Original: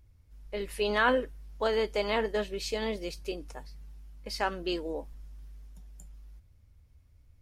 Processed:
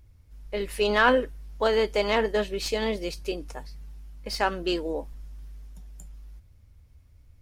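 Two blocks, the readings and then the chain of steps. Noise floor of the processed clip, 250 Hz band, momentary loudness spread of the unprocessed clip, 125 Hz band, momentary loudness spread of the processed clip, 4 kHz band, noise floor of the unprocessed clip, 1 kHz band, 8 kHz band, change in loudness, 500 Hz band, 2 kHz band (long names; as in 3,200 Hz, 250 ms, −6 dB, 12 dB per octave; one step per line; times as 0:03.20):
−55 dBFS, +5.0 dB, 22 LU, +5.0 dB, 22 LU, +5.0 dB, −60 dBFS, +5.0 dB, +5.0 dB, +5.0 dB, +5.0 dB, +5.0 dB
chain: stylus tracing distortion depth 0.023 ms
level +5 dB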